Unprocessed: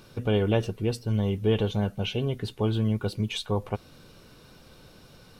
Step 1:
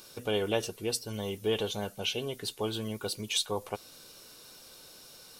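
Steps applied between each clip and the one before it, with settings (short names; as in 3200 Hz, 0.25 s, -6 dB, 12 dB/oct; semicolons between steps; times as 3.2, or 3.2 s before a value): tone controls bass -13 dB, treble +14 dB; gain -2.5 dB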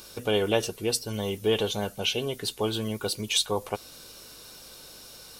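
hum 50 Hz, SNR 34 dB; gain +5 dB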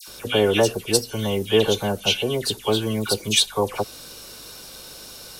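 dispersion lows, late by 79 ms, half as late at 1700 Hz; gain +6.5 dB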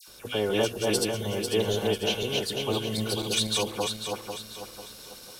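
regenerating reverse delay 0.248 s, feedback 61%, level -1.5 dB; gain -9 dB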